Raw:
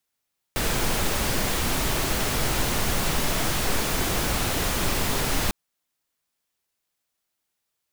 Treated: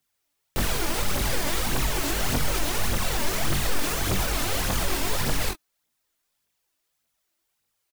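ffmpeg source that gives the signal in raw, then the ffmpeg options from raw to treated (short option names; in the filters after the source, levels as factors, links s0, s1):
-f lavfi -i "anoisesrc=c=pink:a=0.324:d=4.95:r=44100:seed=1"
-filter_complex "[0:a]alimiter=limit=0.0891:level=0:latency=1:release=46,asplit=2[s0][s1];[s1]aecho=0:1:21|42:0.708|0.224[s2];[s0][s2]amix=inputs=2:normalize=0,aphaser=in_gain=1:out_gain=1:delay=3.5:decay=0.52:speed=1.7:type=triangular"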